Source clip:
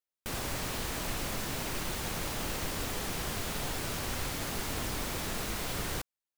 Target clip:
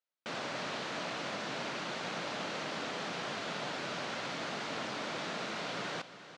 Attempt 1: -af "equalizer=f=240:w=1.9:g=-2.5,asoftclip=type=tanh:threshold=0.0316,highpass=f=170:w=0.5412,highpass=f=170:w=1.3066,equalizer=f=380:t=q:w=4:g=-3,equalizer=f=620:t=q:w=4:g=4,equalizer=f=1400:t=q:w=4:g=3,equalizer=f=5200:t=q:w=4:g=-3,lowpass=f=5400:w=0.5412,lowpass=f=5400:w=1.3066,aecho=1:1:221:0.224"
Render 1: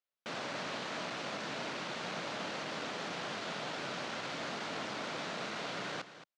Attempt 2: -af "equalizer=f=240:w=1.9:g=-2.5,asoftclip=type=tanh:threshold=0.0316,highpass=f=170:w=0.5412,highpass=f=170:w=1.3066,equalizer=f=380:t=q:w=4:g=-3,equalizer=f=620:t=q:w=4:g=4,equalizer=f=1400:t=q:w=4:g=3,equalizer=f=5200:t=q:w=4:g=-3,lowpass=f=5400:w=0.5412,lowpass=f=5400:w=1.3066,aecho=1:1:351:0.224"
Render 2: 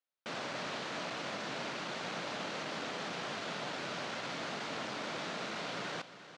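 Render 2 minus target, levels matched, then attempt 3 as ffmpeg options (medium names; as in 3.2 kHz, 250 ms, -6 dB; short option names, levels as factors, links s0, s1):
saturation: distortion +9 dB
-af "equalizer=f=240:w=1.9:g=-2.5,asoftclip=type=tanh:threshold=0.0631,highpass=f=170:w=0.5412,highpass=f=170:w=1.3066,equalizer=f=380:t=q:w=4:g=-3,equalizer=f=620:t=q:w=4:g=4,equalizer=f=1400:t=q:w=4:g=3,equalizer=f=5200:t=q:w=4:g=-3,lowpass=f=5400:w=0.5412,lowpass=f=5400:w=1.3066,aecho=1:1:351:0.224"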